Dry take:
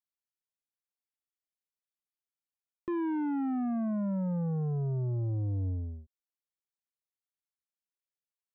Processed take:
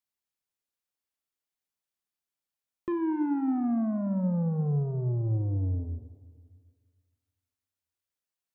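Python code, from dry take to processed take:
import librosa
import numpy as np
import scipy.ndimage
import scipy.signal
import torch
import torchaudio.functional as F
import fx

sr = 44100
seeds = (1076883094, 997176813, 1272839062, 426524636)

y = fx.high_shelf(x, sr, hz=2000.0, db=-10.5, at=(2.92, 5.25))
y = fx.rev_plate(y, sr, seeds[0], rt60_s=1.9, hf_ratio=0.95, predelay_ms=0, drr_db=10.0)
y = y * 10.0 ** (3.0 / 20.0)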